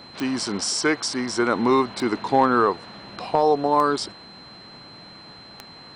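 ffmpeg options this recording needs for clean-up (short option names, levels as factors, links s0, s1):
-af "adeclick=t=4,bandreject=f=4100:w=30"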